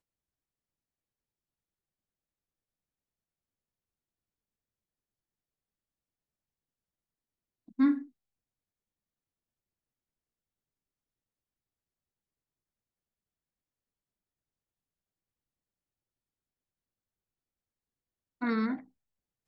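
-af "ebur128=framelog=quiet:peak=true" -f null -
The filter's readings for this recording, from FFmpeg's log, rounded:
Integrated loudness:
  I:         -30.9 LUFS
  Threshold: -42.1 LUFS
Loudness range:
  LRA:         4.8 LU
  Threshold: -57.7 LUFS
  LRA low:   -41.5 LUFS
  LRA high:  -36.8 LUFS
True peak:
  Peak:      -16.3 dBFS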